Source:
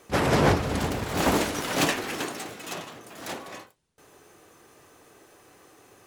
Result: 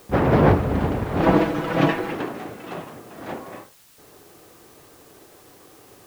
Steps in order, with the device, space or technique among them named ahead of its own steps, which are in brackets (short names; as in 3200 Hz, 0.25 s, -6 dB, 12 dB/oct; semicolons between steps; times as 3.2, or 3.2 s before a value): cassette deck with a dirty head (tape spacing loss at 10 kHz 43 dB; wow and flutter; white noise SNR 29 dB); 1.22–2.13 comb 6.1 ms, depth 74%; gain +7 dB